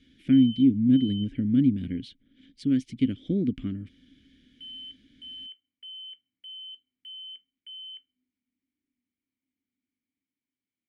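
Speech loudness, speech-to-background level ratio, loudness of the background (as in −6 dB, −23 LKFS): −24.5 LKFS, 17.5 dB, −42.0 LKFS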